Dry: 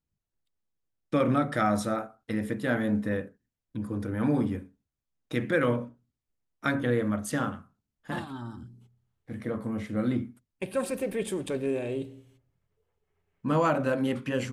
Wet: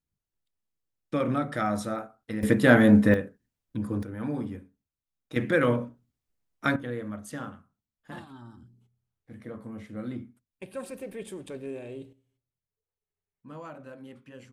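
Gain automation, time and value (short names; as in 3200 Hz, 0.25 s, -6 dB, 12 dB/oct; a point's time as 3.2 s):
-2.5 dB
from 2.43 s +10 dB
from 3.14 s +2.5 dB
from 4.03 s -6 dB
from 5.36 s +2 dB
from 6.76 s -8 dB
from 12.13 s -18 dB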